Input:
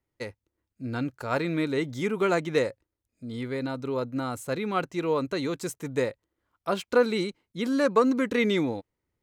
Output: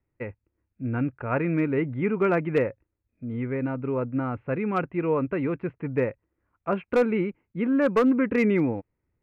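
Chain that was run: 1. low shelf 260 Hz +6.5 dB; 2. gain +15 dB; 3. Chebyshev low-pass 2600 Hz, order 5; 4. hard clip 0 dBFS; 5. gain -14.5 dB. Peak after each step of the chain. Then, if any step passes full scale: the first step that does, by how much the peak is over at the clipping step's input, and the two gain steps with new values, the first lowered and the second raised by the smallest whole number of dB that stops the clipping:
-8.5, +6.5, +6.0, 0.0, -14.5 dBFS; step 2, 6.0 dB; step 2 +9 dB, step 5 -8.5 dB

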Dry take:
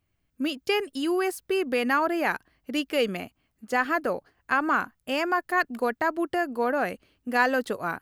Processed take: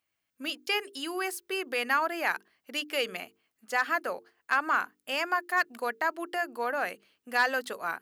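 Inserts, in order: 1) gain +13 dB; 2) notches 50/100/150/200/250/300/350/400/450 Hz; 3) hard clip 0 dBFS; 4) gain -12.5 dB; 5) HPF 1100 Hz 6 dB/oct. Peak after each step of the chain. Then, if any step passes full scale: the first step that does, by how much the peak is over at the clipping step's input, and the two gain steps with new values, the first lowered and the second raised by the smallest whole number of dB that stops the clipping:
+5.0, +5.0, 0.0, -12.5, -11.5 dBFS; step 1, 5.0 dB; step 1 +8 dB, step 4 -7.5 dB

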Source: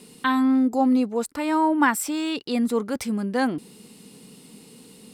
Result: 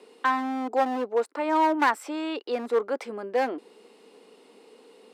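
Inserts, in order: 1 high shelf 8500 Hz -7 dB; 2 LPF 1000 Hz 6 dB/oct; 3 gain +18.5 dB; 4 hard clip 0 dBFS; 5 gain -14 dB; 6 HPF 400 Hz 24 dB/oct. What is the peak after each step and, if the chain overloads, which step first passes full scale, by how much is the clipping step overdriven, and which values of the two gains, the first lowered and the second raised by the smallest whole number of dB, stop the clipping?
-7.5, -10.0, +8.5, 0.0, -14.0, -9.0 dBFS; step 3, 8.5 dB; step 3 +9.5 dB, step 5 -5 dB

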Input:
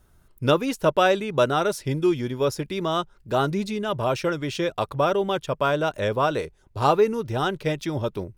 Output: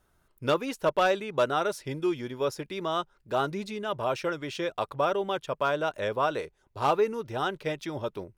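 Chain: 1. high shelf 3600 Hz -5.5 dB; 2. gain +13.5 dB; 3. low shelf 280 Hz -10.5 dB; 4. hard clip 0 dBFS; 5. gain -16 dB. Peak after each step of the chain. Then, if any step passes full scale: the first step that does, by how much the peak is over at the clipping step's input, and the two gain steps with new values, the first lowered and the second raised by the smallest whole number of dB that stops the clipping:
-6.0, +7.5, +5.5, 0.0, -16.0 dBFS; step 2, 5.5 dB; step 2 +7.5 dB, step 5 -10 dB

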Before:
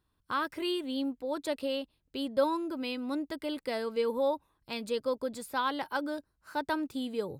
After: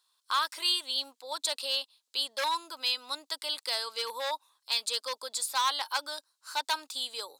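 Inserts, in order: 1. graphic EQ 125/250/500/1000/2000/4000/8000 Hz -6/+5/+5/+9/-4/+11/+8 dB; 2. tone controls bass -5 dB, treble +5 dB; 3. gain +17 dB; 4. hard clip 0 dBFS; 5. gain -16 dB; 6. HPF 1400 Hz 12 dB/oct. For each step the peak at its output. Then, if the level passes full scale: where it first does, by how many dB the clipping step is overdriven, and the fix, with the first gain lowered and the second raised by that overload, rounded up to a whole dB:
-8.5, -8.0, +9.0, 0.0, -16.0, -13.5 dBFS; step 3, 9.0 dB; step 3 +8 dB, step 5 -7 dB

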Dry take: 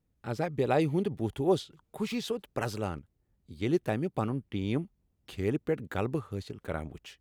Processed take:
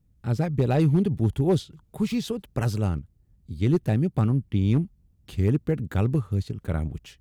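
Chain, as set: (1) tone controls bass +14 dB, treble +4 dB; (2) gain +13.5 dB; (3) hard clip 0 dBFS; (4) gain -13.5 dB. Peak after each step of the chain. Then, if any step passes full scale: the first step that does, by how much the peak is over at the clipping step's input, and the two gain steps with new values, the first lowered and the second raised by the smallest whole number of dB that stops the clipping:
-9.5, +4.0, 0.0, -13.5 dBFS; step 2, 4.0 dB; step 2 +9.5 dB, step 4 -9.5 dB

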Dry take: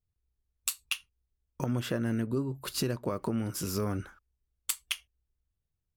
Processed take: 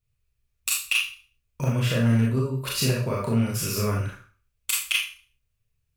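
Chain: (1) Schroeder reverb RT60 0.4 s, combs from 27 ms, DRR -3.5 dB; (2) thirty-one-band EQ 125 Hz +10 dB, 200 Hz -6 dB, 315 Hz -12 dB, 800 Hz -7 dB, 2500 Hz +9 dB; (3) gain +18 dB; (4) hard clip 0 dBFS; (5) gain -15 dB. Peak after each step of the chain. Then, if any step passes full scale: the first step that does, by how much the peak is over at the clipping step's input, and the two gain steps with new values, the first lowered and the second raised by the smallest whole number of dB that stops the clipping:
-13.5, -9.5, +8.5, 0.0, -15.0 dBFS; step 3, 8.5 dB; step 3 +9 dB, step 5 -6 dB

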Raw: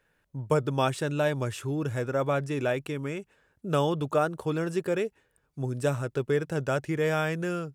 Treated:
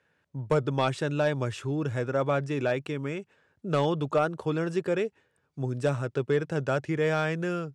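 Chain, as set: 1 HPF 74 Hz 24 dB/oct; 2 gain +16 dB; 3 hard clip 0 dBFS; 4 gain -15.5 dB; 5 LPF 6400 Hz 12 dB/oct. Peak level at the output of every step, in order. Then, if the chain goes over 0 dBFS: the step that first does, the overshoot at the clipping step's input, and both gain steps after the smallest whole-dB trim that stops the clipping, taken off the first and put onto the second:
-11.0, +5.0, 0.0, -15.5, -15.0 dBFS; step 2, 5.0 dB; step 2 +11 dB, step 4 -10.5 dB

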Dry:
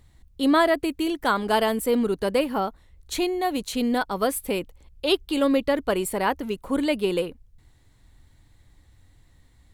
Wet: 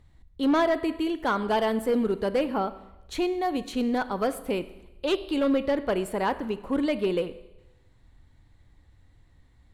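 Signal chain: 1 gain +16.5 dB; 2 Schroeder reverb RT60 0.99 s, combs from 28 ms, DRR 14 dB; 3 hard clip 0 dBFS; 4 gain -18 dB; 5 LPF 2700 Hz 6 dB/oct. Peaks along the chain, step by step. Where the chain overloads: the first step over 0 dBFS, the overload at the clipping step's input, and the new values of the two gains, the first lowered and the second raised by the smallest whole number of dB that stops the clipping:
+7.0, +7.5, 0.0, -18.0, -18.0 dBFS; step 1, 7.5 dB; step 1 +8.5 dB, step 4 -10 dB

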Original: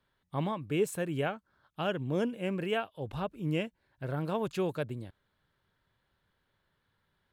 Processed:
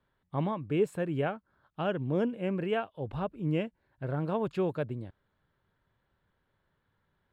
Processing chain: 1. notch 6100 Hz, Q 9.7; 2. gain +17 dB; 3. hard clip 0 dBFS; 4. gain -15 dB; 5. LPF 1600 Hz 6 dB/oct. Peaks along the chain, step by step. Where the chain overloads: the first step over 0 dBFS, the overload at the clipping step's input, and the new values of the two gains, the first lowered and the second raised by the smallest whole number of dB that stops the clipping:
-18.5, -1.5, -1.5, -16.5, -17.0 dBFS; no overload

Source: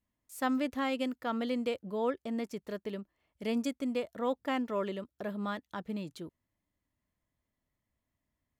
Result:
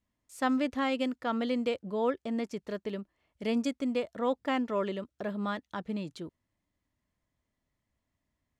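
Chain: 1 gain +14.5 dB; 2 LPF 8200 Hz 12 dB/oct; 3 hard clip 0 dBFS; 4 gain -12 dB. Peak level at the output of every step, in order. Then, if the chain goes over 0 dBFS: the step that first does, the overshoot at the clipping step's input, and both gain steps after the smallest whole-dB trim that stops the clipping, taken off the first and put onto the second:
-5.5, -5.5, -5.5, -17.5 dBFS; no overload

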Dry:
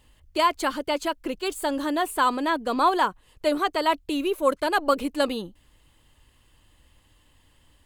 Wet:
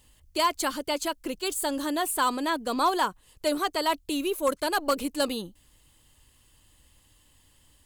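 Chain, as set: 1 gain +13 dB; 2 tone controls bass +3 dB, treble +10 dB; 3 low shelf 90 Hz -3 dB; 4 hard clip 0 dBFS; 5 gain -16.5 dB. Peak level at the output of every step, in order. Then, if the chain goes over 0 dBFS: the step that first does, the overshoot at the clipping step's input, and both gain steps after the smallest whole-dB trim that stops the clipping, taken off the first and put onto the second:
+5.0, +5.5, +5.5, 0.0, -16.5 dBFS; step 1, 5.5 dB; step 1 +7 dB, step 5 -10.5 dB

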